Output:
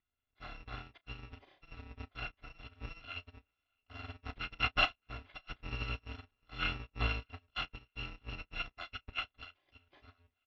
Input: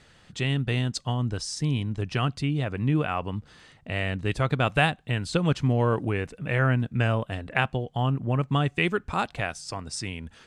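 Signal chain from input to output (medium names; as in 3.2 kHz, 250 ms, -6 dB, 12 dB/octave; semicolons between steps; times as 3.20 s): bit-reversed sample order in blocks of 256 samples; steep low-pass 3.5 kHz 36 dB/octave; band-stop 640 Hz, Q 17; doubling 33 ms -9 dB; thinning echo 619 ms, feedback 46%, high-pass 420 Hz, level -20.5 dB; upward expansion 2.5:1, over -46 dBFS; trim +1 dB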